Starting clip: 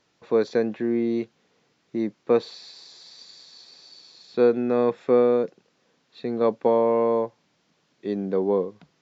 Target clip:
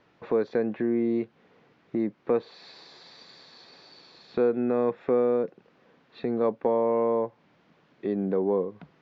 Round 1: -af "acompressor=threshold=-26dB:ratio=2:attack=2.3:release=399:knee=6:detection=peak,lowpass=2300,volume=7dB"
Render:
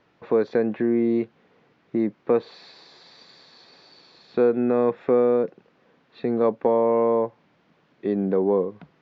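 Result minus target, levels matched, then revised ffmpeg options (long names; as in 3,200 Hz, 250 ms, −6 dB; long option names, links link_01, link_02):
downward compressor: peak gain reduction −4 dB
-af "acompressor=threshold=-34.5dB:ratio=2:attack=2.3:release=399:knee=6:detection=peak,lowpass=2300,volume=7dB"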